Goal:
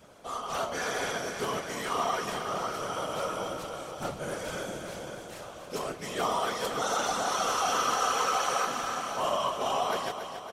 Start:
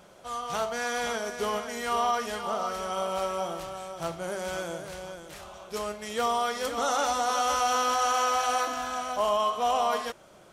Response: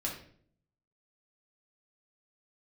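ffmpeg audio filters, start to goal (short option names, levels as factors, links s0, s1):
-af "afftfilt=real='hypot(re,im)*cos(2*PI*random(0))':imag='hypot(re,im)*sin(2*PI*random(1))':win_size=512:overlap=0.75,aecho=1:1:279|558|837|1116|1395|1674|1953:0.355|0.206|0.119|0.0692|0.0402|0.0233|0.0135,adynamicequalizer=threshold=0.00562:dfrequency=730:dqfactor=1.2:tfrequency=730:tqfactor=1.2:attack=5:release=100:ratio=0.375:range=2:mode=cutabove:tftype=bell,volume=1.78"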